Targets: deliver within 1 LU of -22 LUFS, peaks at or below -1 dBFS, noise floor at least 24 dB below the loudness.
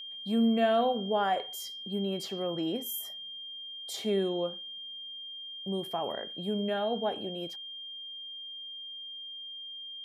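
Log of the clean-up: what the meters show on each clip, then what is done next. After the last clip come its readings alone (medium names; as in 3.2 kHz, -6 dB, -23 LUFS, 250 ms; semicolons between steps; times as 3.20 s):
steady tone 3.2 kHz; tone level -40 dBFS; loudness -33.0 LUFS; peak level -16.0 dBFS; loudness target -22.0 LUFS
-> band-stop 3.2 kHz, Q 30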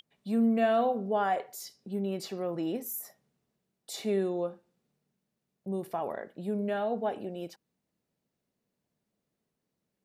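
steady tone not found; loudness -31.5 LUFS; peak level -16.5 dBFS; loudness target -22.0 LUFS
-> trim +9.5 dB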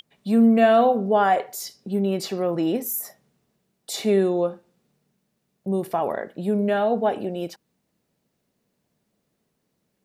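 loudness -22.0 LUFS; peak level -7.0 dBFS; noise floor -75 dBFS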